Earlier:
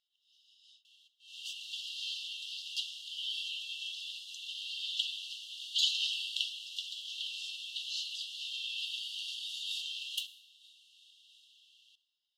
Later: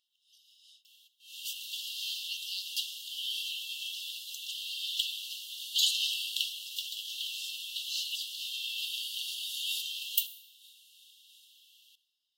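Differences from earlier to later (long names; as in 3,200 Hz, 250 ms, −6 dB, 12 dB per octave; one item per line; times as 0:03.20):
speech +8.5 dB
master: remove high-frequency loss of the air 82 metres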